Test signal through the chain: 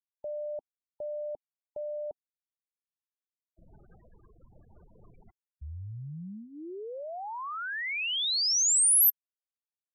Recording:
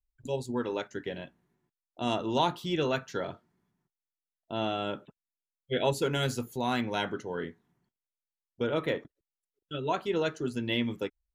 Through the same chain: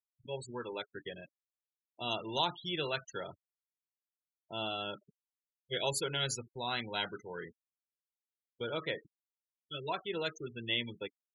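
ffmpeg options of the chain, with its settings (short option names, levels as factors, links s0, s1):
-af "afftfilt=real='re*gte(hypot(re,im),0.0141)':imag='im*gte(hypot(re,im),0.0141)':win_size=1024:overlap=0.75,equalizer=f=260:t=o:w=0.24:g=-12.5,crystalizer=i=5.5:c=0,volume=0.376"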